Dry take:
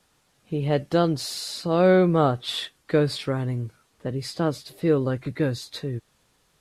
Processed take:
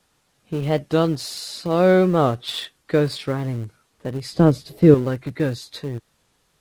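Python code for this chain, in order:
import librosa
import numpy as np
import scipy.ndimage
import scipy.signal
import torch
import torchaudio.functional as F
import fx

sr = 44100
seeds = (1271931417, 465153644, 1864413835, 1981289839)

p1 = np.where(np.abs(x) >= 10.0 ** (-24.5 / 20.0), x, 0.0)
p2 = x + (p1 * 10.0 ** (-11.0 / 20.0))
p3 = fx.low_shelf(p2, sr, hz=440.0, db=12.0, at=(4.32, 4.95))
y = fx.record_warp(p3, sr, rpm=45.0, depth_cents=100.0)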